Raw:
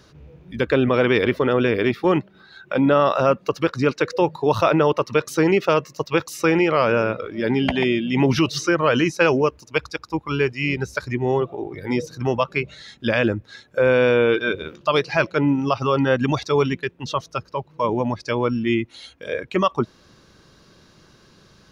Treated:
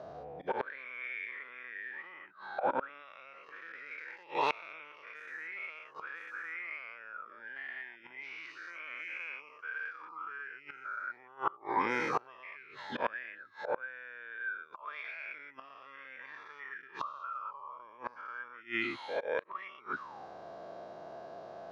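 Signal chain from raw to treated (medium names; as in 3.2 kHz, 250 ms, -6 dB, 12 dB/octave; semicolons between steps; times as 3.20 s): every event in the spectrogram widened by 240 ms; in parallel at +3 dB: compression 4:1, threshold -29 dBFS, peak gain reduction 19 dB; on the sum: slow attack 165 ms; reverse; upward compressor, threshold -33 dBFS; reverse; auto-wah 650–2200 Hz, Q 15, up, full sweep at -6.5 dBFS; inverted gate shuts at -31 dBFS, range -27 dB; trim +13 dB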